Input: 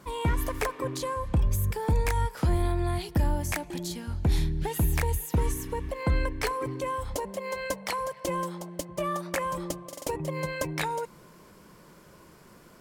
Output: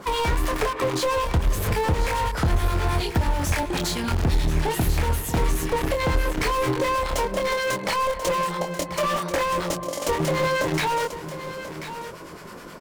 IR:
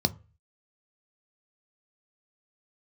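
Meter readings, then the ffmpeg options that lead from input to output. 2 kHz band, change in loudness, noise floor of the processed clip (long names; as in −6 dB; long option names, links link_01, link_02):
+8.5 dB, +5.5 dB, −39 dBFS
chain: -filter_complex "[0:a]asplit=2[link_01][link_02];[link_02]acrusher=bits=4:mix=0:aa=0.000001,volume=-5dB[link_03];[link_01][link_03]amix=inputs=2:normalize=0,acrossover=split=1000[link_04][link_05];[link_04]aeval=exprs='val(0)*(1-0.7/2+0.7/2*cos(2*PI*9.4*n/s))':channel_layout=same[link_06];[link_05]aeval=exprs='val(0)*(1-0.7/2-0.7/2*cos(2*PI*9.4*n/s))':channel_layout=same[link_07];[link_06][link_07]amix=inputs=2:normalize=0,lowshelf=frequency=74:gain=12,asplit=2[link_08][link_09];[link_09]adelay=25,volume=-6.5dB[link_10];[link_08][link_10]amix=inputs=2:normalize=0,asplit=2[link_11][link_12];[link_12]highpass=frequency=720:poles=1,volume=26dB,asoftclip=type=tanh:threshold=-11.5dB[link_13];[link_11][link_13]amix=inputs=2:normalize=0,lowpass=frequency=4800:poles=1,volume=-6dB,bandreject=frequency=50:width_type=h:width=6,bandreject=frequency=100:width_type=h:width=6,bandreject=frequency=150:width_type=h:width=6,bandreject=frequency=200:width_type=h:width=6,bandreject=frequency=250:width_type=h:width=6,bandreject=frequency=300:width_type=h:width=6,bandreject=frequency=350:width_type=h:width=6,acompressor=threshold=-21dB:ratio=6,lowshelf=frequency=490:gain=6.5,aecho=1:1:1037:0.266,volume=-2.5dB"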